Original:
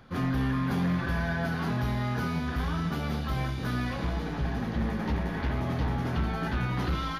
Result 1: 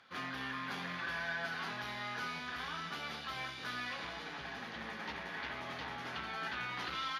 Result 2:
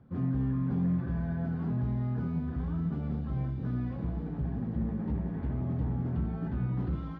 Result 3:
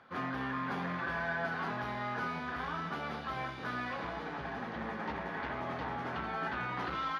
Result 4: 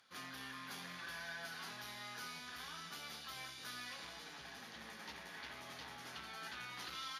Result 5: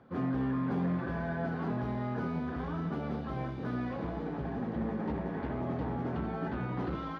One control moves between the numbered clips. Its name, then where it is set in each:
band-pass filter, frequency: 3 kHz, 140 Hz, 1.2 kHz, 7.9 kHz, 410 Hz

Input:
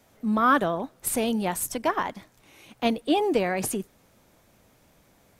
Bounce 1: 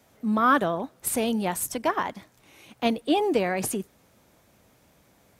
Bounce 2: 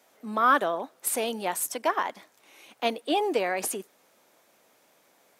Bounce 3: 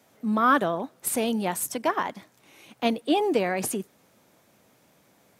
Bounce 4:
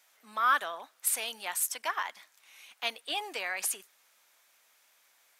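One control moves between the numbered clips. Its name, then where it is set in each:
high-pass, cutoff frequency: 44 Hz, 400 Hz, 140 Hz, 1.4 kHz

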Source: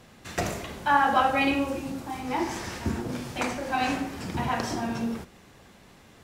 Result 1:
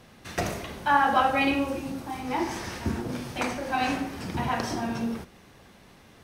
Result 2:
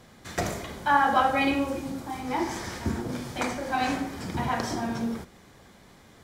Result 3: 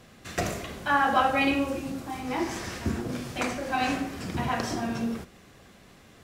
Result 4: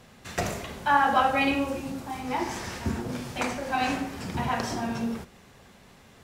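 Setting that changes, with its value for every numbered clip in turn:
band-stop, frequency: 7.3 kHz, 2.7 kHz, 890 Hz, 320 Hz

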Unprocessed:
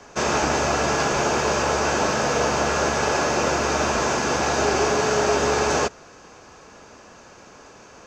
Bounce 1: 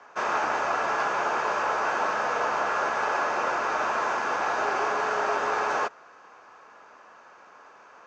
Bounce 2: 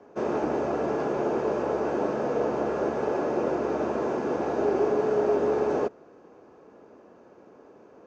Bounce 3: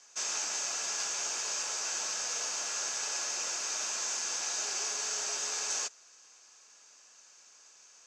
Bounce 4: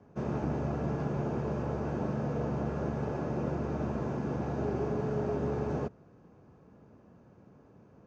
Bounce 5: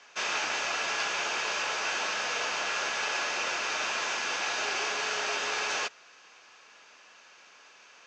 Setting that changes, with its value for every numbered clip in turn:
band-pass filter, frequency: 1.2 kHz, 360 Hz, 7.9 kHz, 140 Hz, 2.9 kHz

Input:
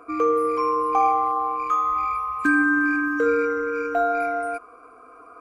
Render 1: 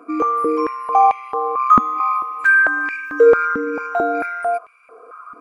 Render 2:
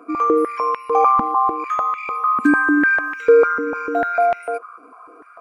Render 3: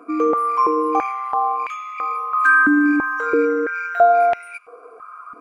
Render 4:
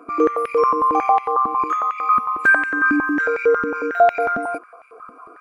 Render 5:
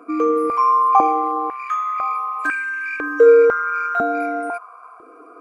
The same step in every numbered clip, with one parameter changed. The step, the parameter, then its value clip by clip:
step-sequenced high-pass, rate: 4.5 Hz, 6.7 Hz, 3 Hz, 11 Hz, 2 Hz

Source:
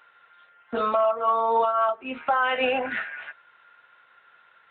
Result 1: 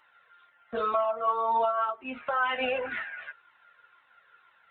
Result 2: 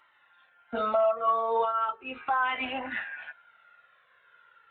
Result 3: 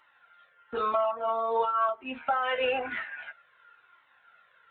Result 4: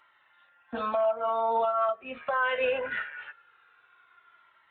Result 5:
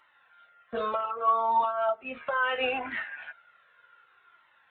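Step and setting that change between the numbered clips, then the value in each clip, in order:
Shepard-style flanger, rate: 2 Hz, 0.37 Hz, 1 Hz, 0.22 Hz, 0.68 Hz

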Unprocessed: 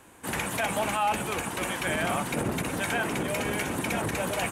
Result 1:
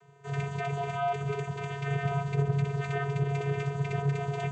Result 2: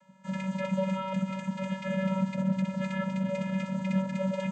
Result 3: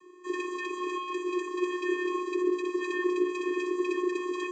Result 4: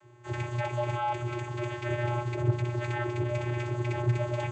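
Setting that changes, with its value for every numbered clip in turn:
vocoder, frequency: 140 Hz, 190 Hz, 360 Hz, 120 Hz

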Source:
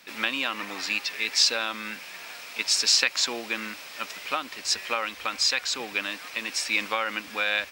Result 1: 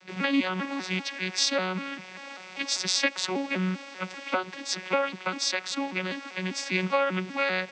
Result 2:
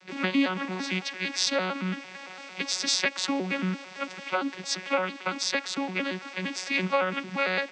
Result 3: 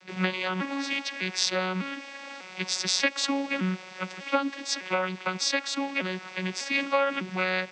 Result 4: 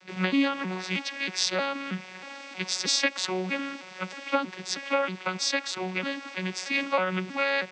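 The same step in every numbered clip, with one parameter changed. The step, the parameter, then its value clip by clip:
vocoder on a broken chord, a note every: 197 ms, 113 ms, 600 ms, 317 ms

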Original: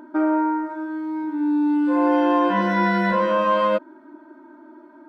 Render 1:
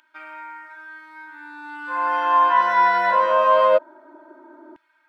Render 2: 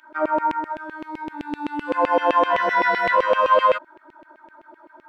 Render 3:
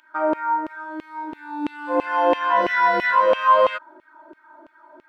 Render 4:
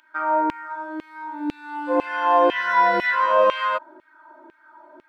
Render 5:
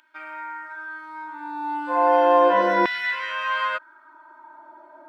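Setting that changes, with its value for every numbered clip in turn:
LFO high-pass, rate: 0.21 Hz, 7.8 Hz, 3 Hz, 2 Hz, 0.35 Hz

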